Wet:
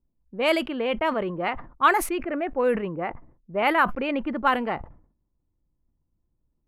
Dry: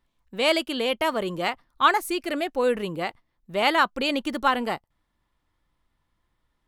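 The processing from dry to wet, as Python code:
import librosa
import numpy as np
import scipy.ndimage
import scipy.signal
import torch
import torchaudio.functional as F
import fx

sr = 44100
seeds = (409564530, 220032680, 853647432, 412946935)

y = fx.env_lowpass(x, sr, base_hz=360.0, full_db=-16.5)
y = fx.band_shelf(y, sr, hz=5400.0, db=fx.steps((0.0, -8.5), (2.17, -15.5), (4.26, -8.0)), octaves=1.7)
y = fx.sustainer(y, sr, db_per_s=110.0)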